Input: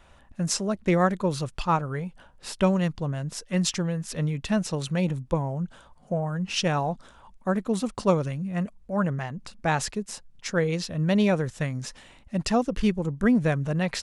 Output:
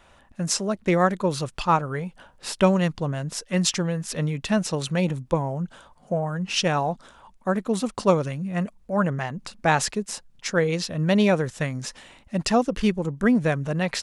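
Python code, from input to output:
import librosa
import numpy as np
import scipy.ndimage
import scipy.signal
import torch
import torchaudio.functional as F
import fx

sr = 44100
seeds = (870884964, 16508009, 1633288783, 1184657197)

p1 = fx.low_shelf(x, sr, hz=140.0, db=-7.5)
p2 = fx.rider(p1, sr, range_db=10, speed_s=2.0)
p3 = p1 + F.gain(torch.from_numpy(p2), 1.5).numpy()
y = F.gain(torch.from_numpy(p3), -3.5).numpy()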